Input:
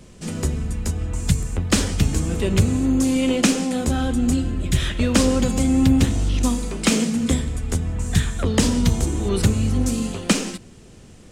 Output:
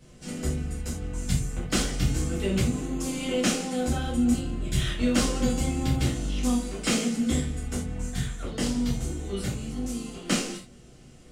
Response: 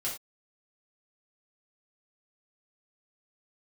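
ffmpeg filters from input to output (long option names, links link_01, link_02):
-filter_complex "[0:a]asplit=3[link_01][link_02][link_03];[link_01]afade=type=out:start_time=8.07:duration=0.02[link_04];[link_02]flanger=delay=2.3:depth=5.7:regen=-73:speed=1.3:shape=sinusoidal,afade=type=in:start_time=8.07:duration=0.02,afade=type=out:start_time=10.24:duration=0.02[link_05];[link_03]afade=type=in:start_time=10.24:duration=0.02[link_06];[link_04][link_05][link_06]amix=inputs=3:normalize=0[link_07];[1:a]atrim=start_sample=2205,atrim=end_sample=4410[link_08];[link_07][link_08]afir=irnorm=-1:irlink=0,volume=-8.5dB"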